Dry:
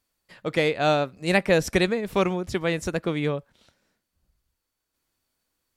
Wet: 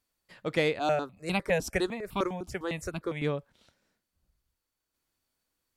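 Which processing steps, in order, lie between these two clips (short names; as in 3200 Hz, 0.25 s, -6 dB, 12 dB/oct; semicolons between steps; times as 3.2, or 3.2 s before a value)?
0.79–3.22 step phaser 9.9 Hz 510–1800 Hz; gain -4 dB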